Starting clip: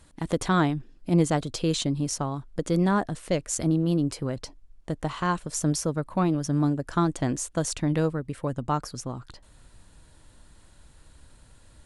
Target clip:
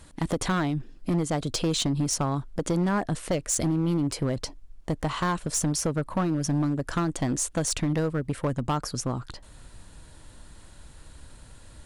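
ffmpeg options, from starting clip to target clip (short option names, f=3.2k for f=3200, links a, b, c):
-af "acompressor=threshold=-25dB:ratio=10,asoftclip=type=hard:threshold=-25.5dB,volume=5.5dB"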